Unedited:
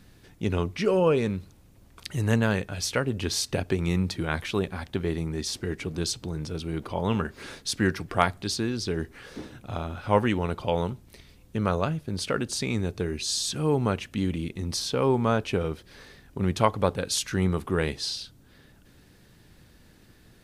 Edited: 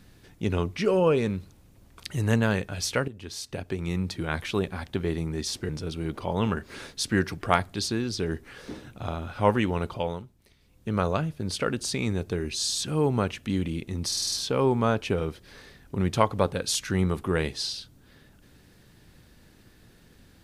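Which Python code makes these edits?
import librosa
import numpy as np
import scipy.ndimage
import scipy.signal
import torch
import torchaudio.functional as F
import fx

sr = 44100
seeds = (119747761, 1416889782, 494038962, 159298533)

y = fx.edit(x, sr, fx.fade_in_from(start_s=3.08, length_s=1.44, floor_db=-15.0),
    fx.cut(start_s=5.69, length_s=0.68),
    fx.fade_down_up(start_s=10.55, length_s=1.11, db=-11.0, fade_s=0.37),
    fx.stutter(start_s=14.75, slice_s=0.05, count=6), tone=tone)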